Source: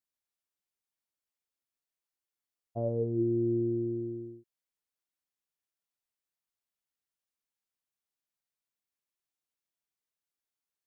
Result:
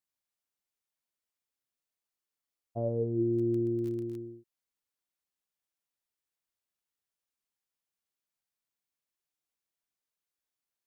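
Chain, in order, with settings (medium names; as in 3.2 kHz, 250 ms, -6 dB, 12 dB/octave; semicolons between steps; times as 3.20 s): 3.33–4.17 s: crackle 12 per s -> 43 per s -38 dBFS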